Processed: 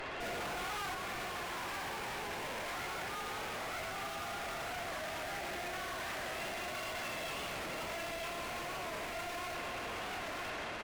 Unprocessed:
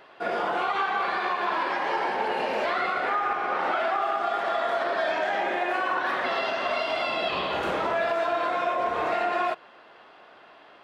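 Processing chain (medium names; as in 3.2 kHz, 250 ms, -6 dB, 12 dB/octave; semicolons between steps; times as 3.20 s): level rider gain up to 9 dB; valve stage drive 52 dB, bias 0.65; bass shelf 330 Hz +7 dB; on a send: delay 948 ms -3 dB; on the sum: peak limiter -53.5 dBFS, peak gain reduction 11.5 dB; peaking EQ 2.2 kHz +5.5 dB 0.78 oct; warped record 45 rpm, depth 100 cents; trim +17.5 dB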